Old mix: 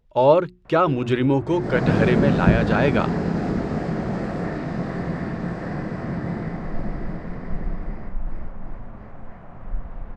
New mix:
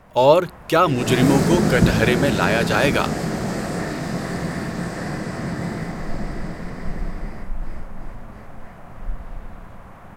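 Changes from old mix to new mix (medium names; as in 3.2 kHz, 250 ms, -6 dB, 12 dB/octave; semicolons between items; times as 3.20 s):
background: entry -0.65 s; master: remove tape spacing loss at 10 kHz 27 dB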